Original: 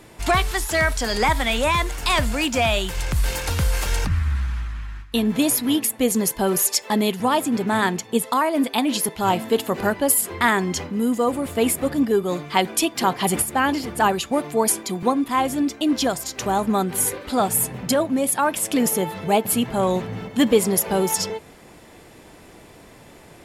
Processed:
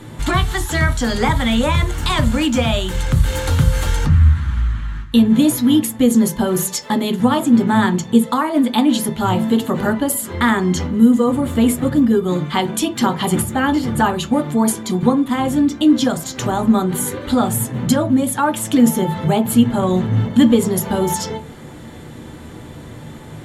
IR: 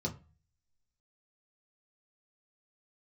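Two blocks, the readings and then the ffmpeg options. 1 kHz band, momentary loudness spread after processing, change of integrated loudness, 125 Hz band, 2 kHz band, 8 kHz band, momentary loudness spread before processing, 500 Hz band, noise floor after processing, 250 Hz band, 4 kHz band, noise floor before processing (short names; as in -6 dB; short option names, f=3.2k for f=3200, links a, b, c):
+1.0 dB, 8 LU, +4.5 dB, +9.5 dB, +0.5 dB, -1.5 dB, 5 LU, +1.5 dB, -35 dBFS, +8.5 dB, +1.5 dB, -46 dBFS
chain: -filter_complex "[0:a]acompressor=threshold=-31dB:ratio=1.5,asplit=2[a][b];[1:a]atrim=start_sample=2205,highshelf=f=9.8k:g=7[c];[b][c]afir=irnorm=-1:irlink=0,volume=-5.5dB[d];[a][d]amix=inputs=2:normalize=0,volume=6.5dB"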